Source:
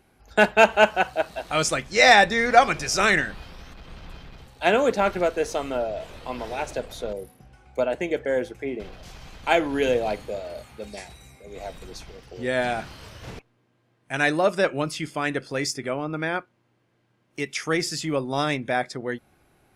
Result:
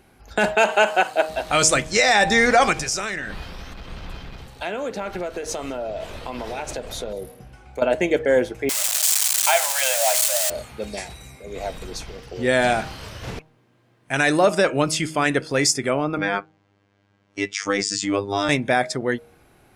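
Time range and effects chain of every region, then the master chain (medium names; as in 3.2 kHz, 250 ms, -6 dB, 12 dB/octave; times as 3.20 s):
0.55–1.29 s: high-pass 270 Hz + band-stop 5.7 kHz, Q 9.3
2.73–7.82 s: compression 5:1, threshold -32 dBFS + delay 194 ms -22.5 dB
8.69–10.50 s: zero-crossing glitches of -15.5 dBFS + brick-wall FIR high-pass 530 Hz
16.18–18.49 s: low-pass 7.5 kHz 24 dB/octave + robot voice 99.9 Hz
whole clip: dynamic bell 7.8 kHz, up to +8 dB, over -47 dBFS, Q 1.4; de-hum 157.2 Hz, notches 6; loudness maximiser +12 dB; trim -5.5 dB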